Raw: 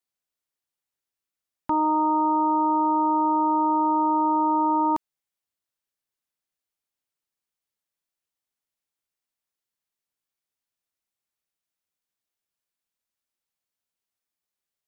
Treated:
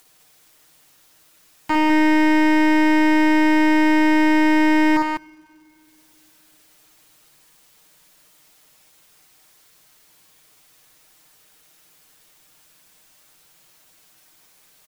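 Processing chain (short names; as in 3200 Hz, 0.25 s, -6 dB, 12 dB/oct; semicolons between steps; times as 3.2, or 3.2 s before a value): one-sided fold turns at -22.5 dBFS; comb 6.5 ms, depth 95%; upward compressor, threshold -35 dBFS; crackle 180/s -51 dBFS; loudspeakers at several distances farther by 19 m -4 dB, 69 m -5 dB; on a send at -19 dB: reverb RT60 2.8 s, pre-delay 4 ms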